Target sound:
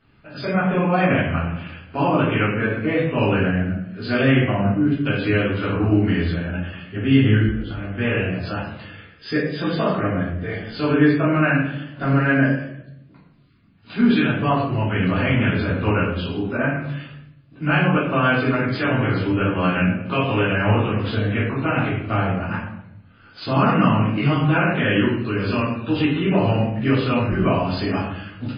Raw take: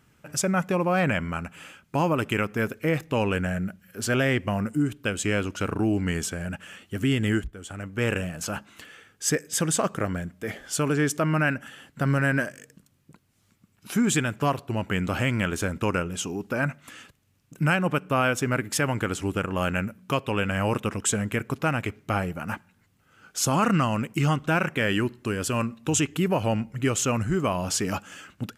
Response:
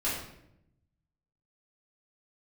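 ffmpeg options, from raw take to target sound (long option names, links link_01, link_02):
-filter_complex "[0:a]asettb=1/sr,asplit=3[link_01][link_02][link_03];[link_01]atrim=end=18.714[link_04];[link_02]atrim=start=18.71:end=20.79,asetpts=PTS-STARTPTS,afade=type=in:duration=0.004:curve=qsin,afade=type=out:start_time=2.076:duration=0.004:curve=qsin,asplit=2[link_05][link_06];[link_06]adelay=17,volume=-8dB[link_07];[link_05][link_07]amix=inputs=2:normalize=0,atrim=end_sample=91728[link_08];[link_03]atrim=start=20.786[link_09];[link_04][link_08]acrossfade=duration=0.004:curve1=hsin:curve2=qsin[link_10];[link_10][link_09]acrossfade=duration=0.004:curve1=qsin:curve2=hsin[link_11];[1:a]atrim=start_sample=2205[link_12];[link_11][link_12]afir=irnorm=-1:irlink=0,volume=-2.5dB" -ar 11025 -c:a libmp3lame -b:a 16k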